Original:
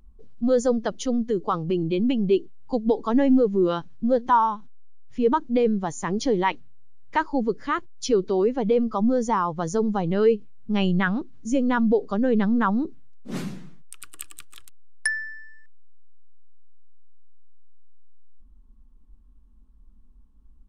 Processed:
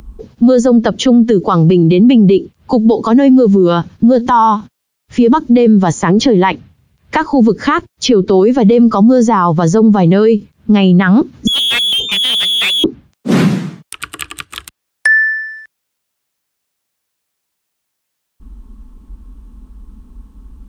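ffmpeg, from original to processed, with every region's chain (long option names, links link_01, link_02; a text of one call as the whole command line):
ffmpeg -i in.wav -filter_complex "[0:a]asettb=1/sr,asplit=3[link_01][link_02][link_03];[link_01]atrim=end=11.474[link_04];[link_02]atrim=start=11.47:end=12.84,asetpts=PTS-STARTPTS,afade=type=in:duration=0.004:curve=qsin,afade=type=out:start_time=1.366:duration=0.004:curve=qsin,lowpass=frequency=3100:width_type=q:width=0.5098,lowpass=frequency=3100:width_type=q:width=0.6013,lowpass=frequency=3100:width_type=q:width=0.9,lowpass=frequency=3100:width_type=q:width=2.563,afreqshift=-3600,aeval=exprs='(tanh(44.7*val(0)+0.6)-tanh(0.6))/44.7':channel_layout=same[link_05];[link_03]atrim=start=12.836[link_06];[link_04][link_05]acrossfade=duration=0.004:curve1=hsin:curve2=qsin[link_07];[link_07][link_06]acrossfade=duration=0.004:curve1=qsin:curve2=hsin,highpass=44,acrossover=split=210|3800[link_08][link_09][link_10];[link_08]acompressor=threshold=-29dB:ratio=4[link_11];[link_09]acompressor=threshold=-27dB:ratio=4[link_12];[link_10]acompressor=threshold=-54dB:ratio=4[link_13];[link_11][link_12][link_13]amix=inputs=3:normalize=0,alimiter=level_in=24.5dB:limit=-1dB:release=50:level=0:latency=1,volume=-1dB" out.wav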